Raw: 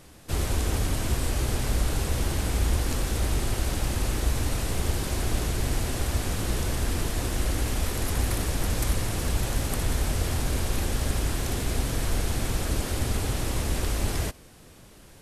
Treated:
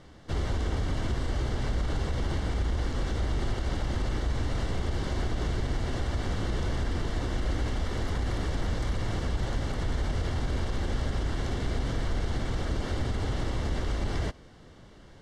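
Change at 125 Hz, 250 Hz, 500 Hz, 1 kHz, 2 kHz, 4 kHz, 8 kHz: -2.5, -2.0, -2.0, -2.5, -4.0, -6.0, -15.0 dB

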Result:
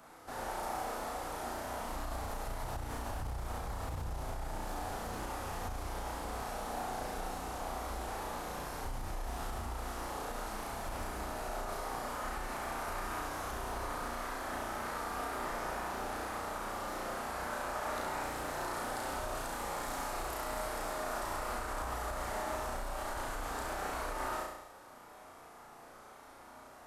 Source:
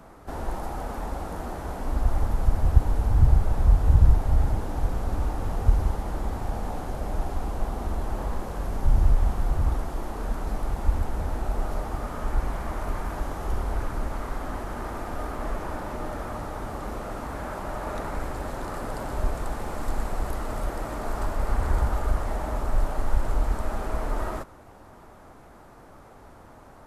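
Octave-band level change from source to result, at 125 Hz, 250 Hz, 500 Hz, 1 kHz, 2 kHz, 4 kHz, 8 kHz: -19.0 dB, -10.0 dB, -6.0 dB, -3.0 dB, -1.0 dB, +1.0 dB, n/a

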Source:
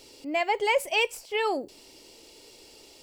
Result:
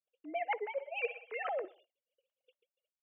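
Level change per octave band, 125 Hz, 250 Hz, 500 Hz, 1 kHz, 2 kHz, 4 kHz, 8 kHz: n/a, -15.0 dB, -10.5 dB, -10.5 dB, -11.5 dB, -21.5 dB, under -40 dB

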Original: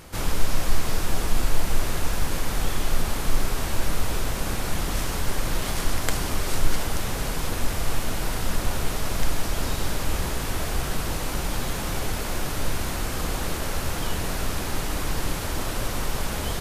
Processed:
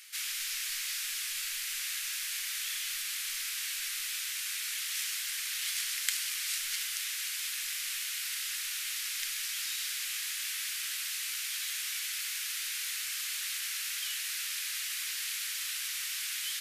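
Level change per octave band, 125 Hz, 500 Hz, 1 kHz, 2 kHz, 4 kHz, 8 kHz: under -40 dB, under -40 dB, -21.5 dB, -3.5 dB, 0.0 dB, 0.0 dB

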